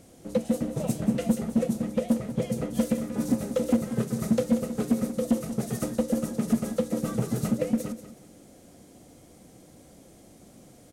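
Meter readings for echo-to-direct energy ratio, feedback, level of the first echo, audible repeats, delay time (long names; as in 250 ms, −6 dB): −12.0 dB, 23%, −12.0 dB, 2, 185 ms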